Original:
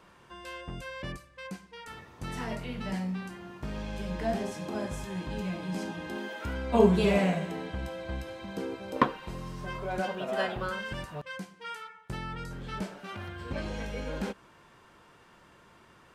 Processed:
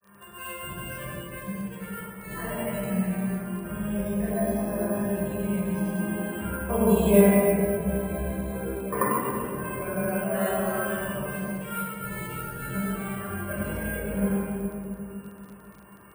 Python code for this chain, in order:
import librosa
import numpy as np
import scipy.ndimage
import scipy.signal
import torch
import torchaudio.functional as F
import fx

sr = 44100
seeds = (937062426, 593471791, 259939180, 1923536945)

p1 = fx.comb_fb(x, sr, f0_hz=200.0, decay_s=0.4, harmonics='all', damping=0.0, mix_pct=80)
p2 = fx.granulator(p1, sr, seeds[0], grain_ms=151.0, per_s=20.0, spray_ms=100.0, spread_st=0)
p3 = fx.spec_topn(p2, sr, count=64)
p4 = fx.bass_treble(p3, sr, bass_db=-3, treble_db=-12)
p5 = p4 + fx.echo_filtered(p4, sr, ms=255, feedback_pct=61, hz=870.0, wet_db=-10.5, dry=0)
p6 = fx.room_shoebox(p5, sr, seeds[1], volume_m3=2800.0, walls='mixed', distance_m=5.6)
p7 = np.repeat(p6[::4], 4)[:len(p6)]
p8 = scipy.signal.sosfilt(scipy.signal.butter(2, 65.0, 'highpass', fs=sr, output='sos'), p7)
p9 = fx.high_shelf(p8, sr, hz=9400.0, db=9.0)
p10 = fx.dmg_crackle(p9, sr, seeds[2], per_s=18.0, level_db=-52.0)
p11 = fx.rider(p10, sr, range_db=3, speed_s=0.5)
p12 = p10 + F.gain(torch.from_numpy(p11), 1.5).numpy()
y = F.gain(torch.from_numpy(p12), 2.0).numpy()